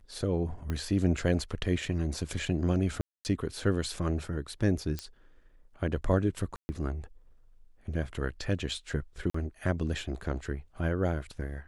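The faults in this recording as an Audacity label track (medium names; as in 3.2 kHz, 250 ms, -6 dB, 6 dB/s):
0.700000	0.700000	pop -21 dBFS
3.010000	3.250000	dropout 239 ms
4.990000	4.990000	pop -19 dBFS
6.560000	6.690000	dropout 130 ms
9.300000	9.340000	dropout 44 ms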